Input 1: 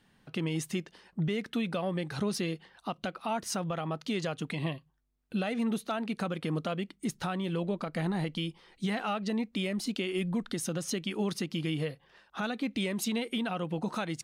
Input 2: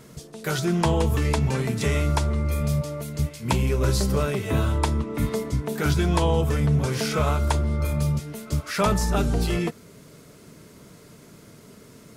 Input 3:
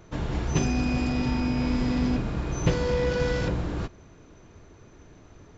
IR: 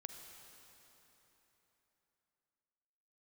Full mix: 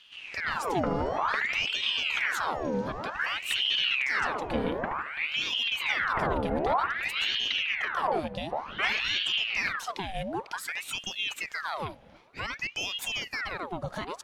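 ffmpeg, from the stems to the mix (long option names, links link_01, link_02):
-filter_complex "[0:a]equalizer=frequency=8600:width_type=o:width=0.23:gain=-5.5,volume=0dB,asplit=3[link_01][link_02][link_03];[link_02]volume=-13.5dB[link_04];[1:a]lowpass=frequency=1800:width=0.5412,lowpass=frequency=1800:width=1.3066,volume=-5.5dB,asplit=2[link_05][link_06];[link_06]volume=-9.5dB[link_07];[2:a]acompressor=threshold=-33dB:ratio=2,dynaudnorm=framelen=200:gausssize=3:maxgain=9.5dB,volume=-12.5dB,asplit=2[link_08][link_09];[link_09]volume=-12.5dB[link_10];[link_03]apad=whole_len=245661[link_11];[link_08][link_11]sidechaincompress=threshold=-44dB:ratio=8:attack=16:release=490[link_12];[3:a]atrim=start_sample=2205[link_13];[link_04][link_13]afir=irnorm=-1:irlink=0[link_14];[link_07][link_10]amix=inputs=2:normalize=0,aecho=0:1:75|150|225|300|375|450|525|600|675:1|0.57|0.325|0.185|0.106|0.0602|0.0343|0.0195|0.0111[link_15];[link_01][link_05][link_12][link_14][link_15]amix=inputs=5:normalize=0,aeval=exprs='val(0)*sin(2*PI*1700*n/s+1700*0.8/0.54*sin(2*PI*0.54*n/s))':channel_layout=same"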